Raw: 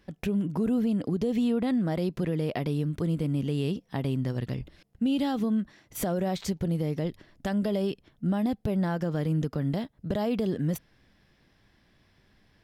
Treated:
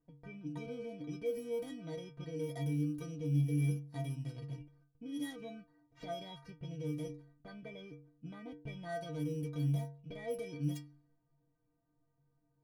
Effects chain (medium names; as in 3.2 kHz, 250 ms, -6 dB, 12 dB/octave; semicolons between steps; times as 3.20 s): bit-reversed sample order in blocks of 16 samples; inharmonic resonator 140 Hz, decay 0.57 s, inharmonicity 0.03; level-controlled noise filter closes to 1 kHz, open at -36.5 dBFS; trim +2.5 dB